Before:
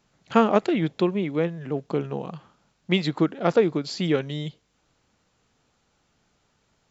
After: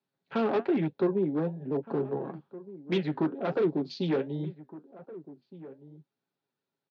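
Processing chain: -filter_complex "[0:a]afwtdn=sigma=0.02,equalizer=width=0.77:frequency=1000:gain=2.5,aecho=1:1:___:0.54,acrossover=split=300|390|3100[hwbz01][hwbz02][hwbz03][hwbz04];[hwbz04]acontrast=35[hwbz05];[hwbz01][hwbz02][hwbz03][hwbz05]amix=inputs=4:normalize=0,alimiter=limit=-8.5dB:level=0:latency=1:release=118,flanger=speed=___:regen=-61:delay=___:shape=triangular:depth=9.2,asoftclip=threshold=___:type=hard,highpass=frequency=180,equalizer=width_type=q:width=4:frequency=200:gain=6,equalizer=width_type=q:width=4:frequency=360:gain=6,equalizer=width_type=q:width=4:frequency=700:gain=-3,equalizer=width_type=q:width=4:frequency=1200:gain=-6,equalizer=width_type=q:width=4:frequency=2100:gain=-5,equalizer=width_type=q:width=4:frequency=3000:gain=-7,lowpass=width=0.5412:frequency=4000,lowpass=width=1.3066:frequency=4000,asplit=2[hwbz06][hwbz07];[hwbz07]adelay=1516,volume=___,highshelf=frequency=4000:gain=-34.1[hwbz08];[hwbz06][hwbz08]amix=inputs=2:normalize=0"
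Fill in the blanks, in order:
7.3, 1.1, 5, -24dB, -17dB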